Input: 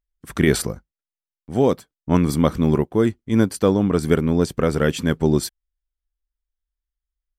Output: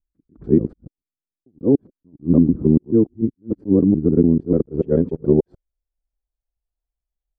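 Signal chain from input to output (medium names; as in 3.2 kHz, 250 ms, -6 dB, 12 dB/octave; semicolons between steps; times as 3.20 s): time reversed locally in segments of 146 ms; low-pass sweep 310 Hz -> 710 Hz, 4.28–6.14 s; attacks held to a fixed rise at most 370 dB/s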